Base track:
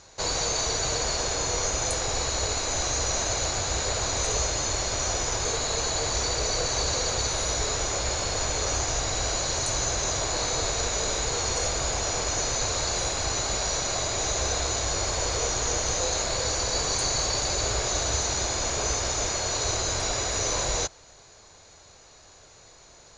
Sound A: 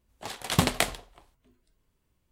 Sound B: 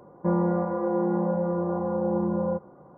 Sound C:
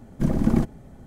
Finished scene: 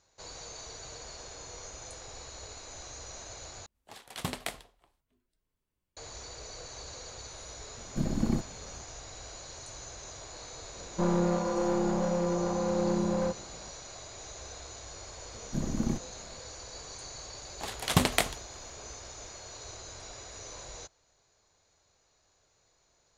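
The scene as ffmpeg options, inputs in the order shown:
-filter_complex "[1:a]asplit=2[a][b];[3:a]asplit=2[c][d];[0:a]volume=-18dB[e];[a]equalizer=f=71:w=0.33:g=-2.5[f];[2:a]aeval=exprs='clip(val(0),-1,0.0422)':c=same[g];[e]asplit=2[h][i];[h]atrim=end=3.664[j];[f]atrim=end=2.31,asetpts=PTS-STARTPTS,volume=-11dB[k];[i]atrim=start=5.966[l];[c]atrim=end=1.06,asetpts=PTS-STARTPTS,volume=-8.5dB,afade=t=in:d=0.004:c=hsin,afade=t=out:st=1.056:d=0.004:c=hsin,adelay=7760[m];[g]atrim=end=2.97,asetpts=PTS-STARTPTS,volume=-1.5dB,afade=t=in:d=0.004:c=hsin,afade=t=out:st=2.966:d=0.004:c=hsin,adelay=473634S[n];[d]atrim=end=1.06,asetpts=PTS-STARTPTS,volume=-10.5dB,afade=t=in:d=0.004:c=hsin,afade=t=out:st=1.056:d=0.004:c=hsin,adelay=15330[o];[b]atrim=end=2.31,asetpts=PTS-STARTPTS,volume=-1dB,afade=t=in:d=0.004:c=hsin,afade=t=out:st=2.306:d=0.004:c=hsin,adelay=17380[p];[j][k]acrossfade=d=0.004:c1=hsin:c2=hsin[q];[q][l]acrossfade=d=0.004:c1=hsin:c2=hsin[r];[r][m][n][o][p]amix=inputs=5:normalize=0"

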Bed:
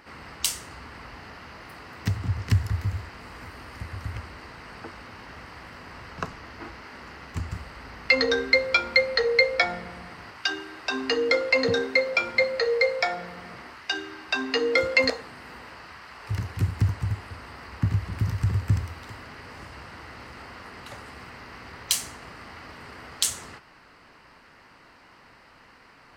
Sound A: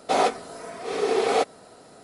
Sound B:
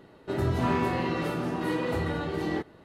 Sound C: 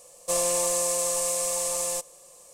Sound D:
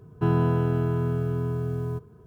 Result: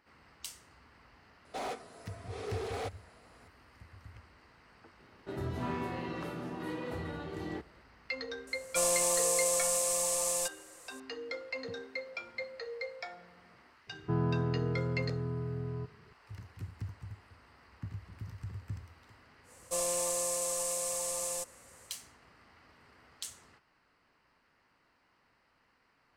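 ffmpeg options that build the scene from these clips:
-filter_complex "[3:a]asplit=2[a][b];[0:a]volume=-18dB[c];[1:a]asoftclip=type=hard:threshold=-20.5dB[d];[4:a]lowpass=1.9k[e];[d]atrim=end=2.03,asetpts=PTS-STARTPTS,volume=-14dB,afade=t=in:d=0.004:c=hsin,afade=t=out:st=2.026:d=0.004:c=hsin,adelay=1450[f];[2:a]atrim=end=2.84,asetpts=PTS-STARTPTS,volume=-10dB,afade=t=in:d=0.004:c=hsin,afade=t=out:st=2.836:d=0.004:c=hsin,adelay=4990[g];[a]atrim=end=2.53,asetpts=PTS-STARTPTS,volume=-3.5dB,afade=t=in:d=0.004:c=hsin,afade=t=out:st=2.526:d=0.004:c=hsin,adelay=8470[h];[e]atrim=end=2.26,asetpts=PTS-STARTPTS,volume=-8.5dB,afade=t=in:d=0.004:c=hsin,afade=t=out:st=2.256:d=0.004:c=hsin,adelay=13870[i];[b]atrim=end=2.53,asetpts=PTS-STARTPTS,volume=-7.5dB,afade=t=in:d=0.1,afade=t=out:st=2.43:d=0.1,adelay=19430[j];[c][f][g][h][i][j]amix=inputs=6:normalize=0"

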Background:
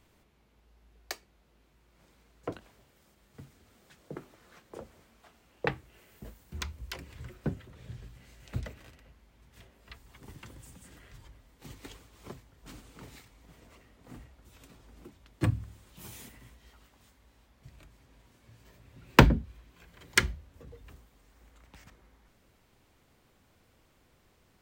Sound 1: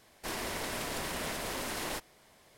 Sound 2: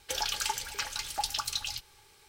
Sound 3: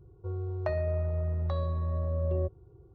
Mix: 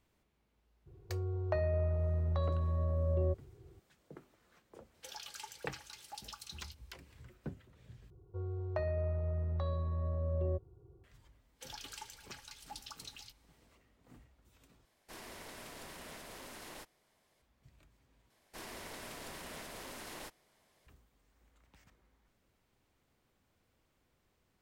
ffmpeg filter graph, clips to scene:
-filter_complex "[3:a]asplit=2[a][b];[2:a]asplit=2[c][d];[1:a]asplit=2[e][f];[0:a]volume=-10.5dB[g];[c]highpass=93[h];[g]asplit=4[i][j][k][l];[i]atrim=end=8.104[m];[b]atrim=end=2.94,asetpts=PTS-STARTPTS,volume=-5dB[n];[j]atrim=start=11.036:end=14.854[o];[e]atrim=end=2.57,asetpts=PTS-STARTPTS,volume=-13dB[p];[k]atrim=start=17.416:end=18.304[q];[f]atrim=end=2.57,asetpts=PTS-STARTPTS,volume=-10.5dB[r];[l]atrim=start=20.866[s];[a]atrim=end=2.94,asetpts=PTS-STARTPTS,volume=-2.5dB,afade=t=in:d=0.004:c=hsin,afade=t=out:st=2.936:d=0.004:c=hsin,adelay=860[t];[h]atrim=end=2.28,asetpts=PTS-STARTPTS,volume=-16dB,afade=t=in:d=0.004:c=hsin,afade=t=out:st=2.276:d=0.004:c=hsin,adelay=4940[u];[d]atrim=end=2.28,asetpts=PTS-STARTPTS,volume=-16.5dB,afade=t=in:d=0.1,afade=t=out:st=2.18:d=0.1,adelay=11520[v];[m][n]acrossfade=d=0.004:c1=hsin:c2=hsin[w];[w][o]acrossfade=d=0.004:c1=hsin:c2=hsin[x];[x][p]acrossfade=d=0.004:c1=hsin:c2=hsin[y];[y][q]acrossfade=d=0.004:c1=hsin:c2=hsin[z];[z][r]acrossfade=d=0.004:c1=hsin:c2=hsin[aa];[aa][s]acrossfade=d=0.004:c1=hsin:c2=hsin[ab];[ab][t][u][v]amix=inputs=4:normalize=0"

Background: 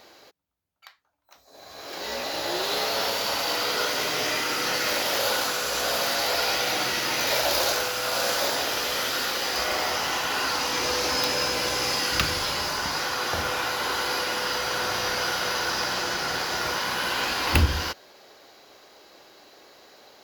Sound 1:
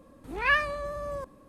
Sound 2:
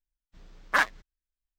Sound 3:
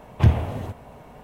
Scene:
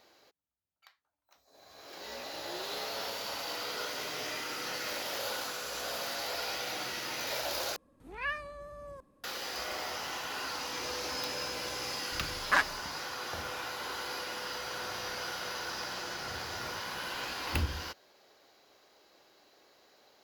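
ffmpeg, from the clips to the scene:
-filter_complex "[0:a]volume=-11.5dB[a];[3:a]acompressor=threshold=-36dB:ratio=6:attack=3.2:release=140:knee=1:detection=peak[b];[a]asplit=2[c][d];[c]atrim=end=7.764[e];[1:a]atrim=end=1.48,asetpts=PTS-STARTPTS,volume=-11.5dB[f];[d]atrim=start=9.236[g];[2:a]atrim=end=1.58,asetpts=PTS-STARTPTS,volume=-3dB,afade=t=in:d=0.004:c=hsin,afade=t=out:st=1.576:d=0.004:c=hsin,adelay=519498S[h];[b]atrim=end=1.23,asetpts=PTS-STARTPTS,volume=-12.5dB,afade=t=in:d=0.004:c=hsin,afade=t=out:st=1.226:d=0.004:c=hsin,adelay=16080[i];[e][f]acrossfade=d=0.004:c1=hsin:c2=hsin[j];[j][g]acrossfade=d=0.004:c1=hsin:c2=hsin[k];[k][h][i]amix=inputs=3:normalize=0"

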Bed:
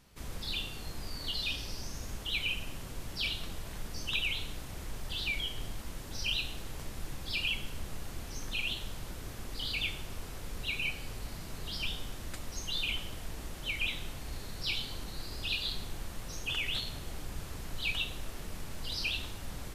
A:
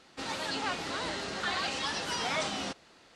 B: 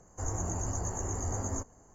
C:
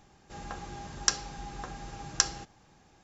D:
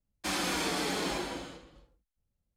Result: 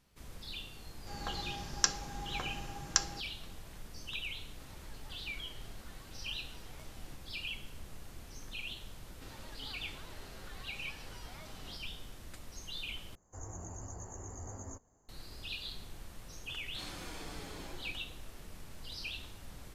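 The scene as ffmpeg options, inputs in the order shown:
-filter_complex "[1:a]asplit=2[a][b];[0:a]volume=-8dB[c];[3:a]dynaudnorm=f=160:g=5:m=7dB[d];[a]acompressor=threshold=-46dB:ratio=6:attack=3.2:release=140:knee=1:detection=peak[e];[b]acompressor=threshold=-38dB:ratio=6:attack=3.2:release=140:knee=1:detection=peak[f];[c]asplit=2[g][h];[g]atrim=end=13.154[i];[2:a]atrim=end=1.94,asetpts=PTS-STARTPTS,volume=-11.5dB[j];[h]atrim=start=15.086[k];[d]atrim=end=3.03,asetpts=PTS-STARTPTS,volume=-6.5dB,afade=t=in:d=0.004:c=hsin,afade=t=out:st=3.026:d=0.004:c=hsin,adelay=760[l];[e]atrim=end=3.15,asetpts=PTS-STARTPTS,volume=-11dB,afade=t=in:d=0.004:c=hsin,afade=t=out:st=3.146:d=0.004:c=hsin,adelay=4430[m];[f]atrim=end=3.15,asetpts=PTS-STARTPTS,volume=-12dB,afade=t=in:d=0.004:c=hsin,afade=t=out:st=3.146:d=0.004:c=hsin,adelay=9040[n];[4:a]atrim=end=2.56,asetpts=PTS-STARTPTS,volume=-15.5dB,afade=t=in:d=0.004:c=hsin,afade=t=out:st=2.556:d=0.004:c=hsin,adelay=16540[o];[i][j]acrossfade=d=0.004:c1=hsin:c2=hsin[p];[p][k]acrossfade=d=0.004:c1=hsin:c2=hsin[q];[q][l][m][n][o]amix=inputs=5:normalize=0"

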